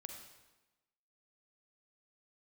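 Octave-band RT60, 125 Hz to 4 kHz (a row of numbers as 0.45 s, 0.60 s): 1.0 s, 1.2 s, 1.1 s, 1.1 s, 1.0 s, 0.95 s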